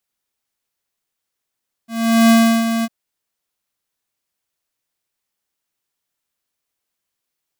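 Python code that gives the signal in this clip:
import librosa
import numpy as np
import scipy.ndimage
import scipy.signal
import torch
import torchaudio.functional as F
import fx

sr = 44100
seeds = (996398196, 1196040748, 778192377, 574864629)

y = fx.adsr_tone(sr, wave='square', hz=228.0, attack_ms=413.0, decay_ms=348.0, sustain_db=-9.0, held_s=0.96, release_ms=42.0, level_db=-9.5)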